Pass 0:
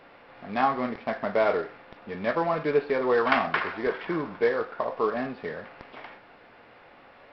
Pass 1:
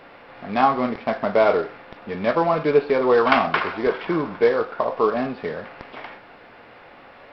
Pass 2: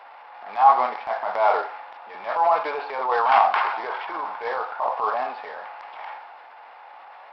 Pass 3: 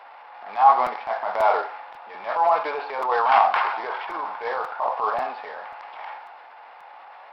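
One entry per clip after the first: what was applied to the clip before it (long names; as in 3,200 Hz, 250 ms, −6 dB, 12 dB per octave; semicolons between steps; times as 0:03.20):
dynamic equaliser 1,800 Hz, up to −6 dB, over −46 dBFS, Q 3.7; level +6.5 dB
high-pass with resonance 840 Hz, resonance Q 4.9; transient designer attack −9 dB, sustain +4 dB; level −4.5 dB
regular buffer underruns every 0.54 s, samples 256, repeat, from 0:00.86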